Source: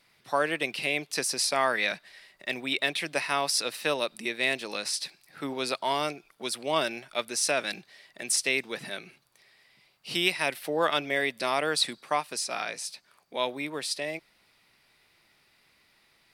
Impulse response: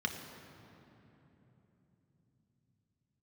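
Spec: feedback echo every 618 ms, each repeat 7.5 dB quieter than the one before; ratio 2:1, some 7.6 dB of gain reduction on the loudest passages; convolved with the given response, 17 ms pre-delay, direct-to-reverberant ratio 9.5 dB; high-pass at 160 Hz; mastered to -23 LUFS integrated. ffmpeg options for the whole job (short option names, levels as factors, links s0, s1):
-filter_complex "[0:a]highpass=160,acompressor=threshold=0.02:ratio=2,aecho=1:1:618|1236|1854|2472|3090:0.422|0.177|0.0744|0.0312|0.0131,asplit=2[s0][s1];[1:a]atrim=start_sample=2205,adelay=17[s2];[s1][s2]afir=irnorm=-1:irlink=0,volume=0.2[s3];[s0][s3]amix=inputs=2:normalize=0,volume=3.35"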